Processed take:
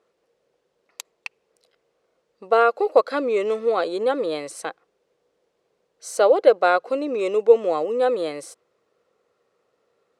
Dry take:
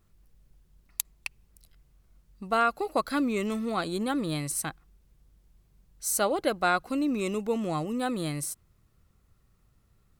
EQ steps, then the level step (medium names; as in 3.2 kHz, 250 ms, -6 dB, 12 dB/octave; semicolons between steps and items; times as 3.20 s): resonant high-pass 480 Hz, resonance Q 4.9; distance through air 87 m; +3.5 dB